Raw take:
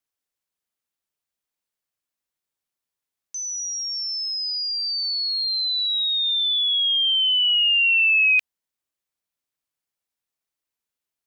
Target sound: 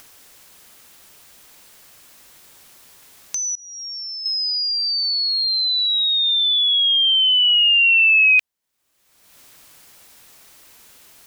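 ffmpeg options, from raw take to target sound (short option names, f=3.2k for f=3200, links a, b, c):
-filter_complex "[0:a]asettb=1/sr,asplit=3[a][b][c];[a]atrim=end=3.554[d];[b]atrim=start=3.55:end=4.26,asetpts=PTS-STARTPTS,afade=t=in:d=0.004:c=qsin,afade=t=out:st=0.706:d=0.004:c=qsin,agate=range=-33dB:threshold=-17dB:ratio=3:detection=peak[e];[c]atrim=start=4.256[f];[d][e]acrossfade=d=0.004:c1=hsin:c2=qsin[g];[g][f]acrossfade=d=0.004:c1=qsin:c2=hsin,acompressor=mode=upward:threshold=-25dB:ratio=2.5,volume=4dB"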